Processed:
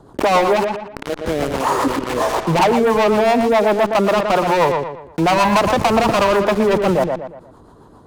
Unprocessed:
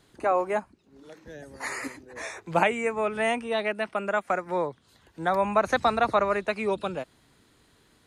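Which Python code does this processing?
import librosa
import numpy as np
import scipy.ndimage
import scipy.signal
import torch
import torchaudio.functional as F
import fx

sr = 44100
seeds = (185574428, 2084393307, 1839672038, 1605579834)

p1 = fx.high_shelf_res(x, sr, hz=1500.0, db=-14.0, q=3.0)
p2 = fx.leveller(p1, sr, passes=5)
p3 = fx.fuzz(p2, sr, gain_db=44.0, gate_db=-41.0)
p4 = p2 + (p3 * librosa.db_to_amplitude(-8.5))
p5 = fx.rotary(p4, sr, hz=7.5)
p6 = p5 + fx.echo_filtered(p5, sr, ms=118, feedback_pct=16, hz=3100.0, wet_db=-9, dry=0)
p7 = fx.env_flatten(p6, sr, amount_pct=50)
y = p7 * librosa.db_to_amplitude(-5.5)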